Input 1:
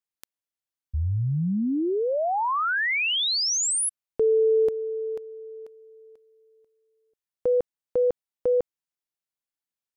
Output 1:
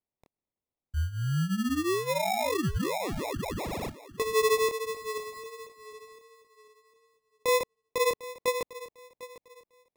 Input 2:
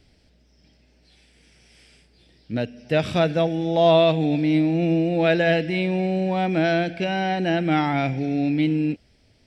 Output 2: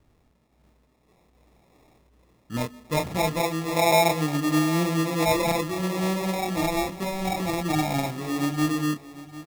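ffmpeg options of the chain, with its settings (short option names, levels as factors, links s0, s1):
-filter_complex "[0:a]acrossover=split=290|1600[s0][s1][s2];[s2]alimiter=level_in=1.41:limit=0.0631:level=0:latency=1:release=108,volume=0.708[s3];[s0][s1][s3]amix=inputs=3:normalize=0,flanger=delay=19:depth=7.6:speed=1.4,acrusher=samples=29:mix=1:aa=0.000001,aecho=1:1:750|1500|2250:0.15|0.0419|0.0117,volume=0.891"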